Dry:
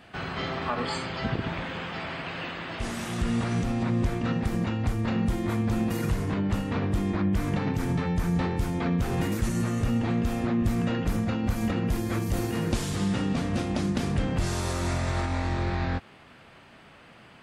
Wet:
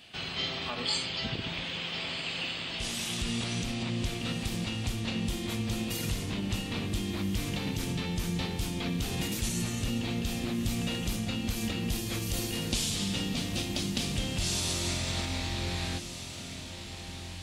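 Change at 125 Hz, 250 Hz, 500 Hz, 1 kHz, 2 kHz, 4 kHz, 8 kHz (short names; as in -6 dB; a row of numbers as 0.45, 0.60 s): -6.5, -6.5, -7.0, -8.5, -2.0, +7.5, +6.5 dB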